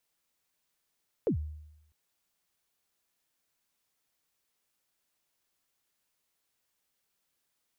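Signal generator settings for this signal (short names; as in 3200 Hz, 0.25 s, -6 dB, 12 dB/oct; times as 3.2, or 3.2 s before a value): kick drum length 0.65 s, from 530 Hz, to 76 Hz, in 98 ms, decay 0.87 s, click off, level -22.5 dB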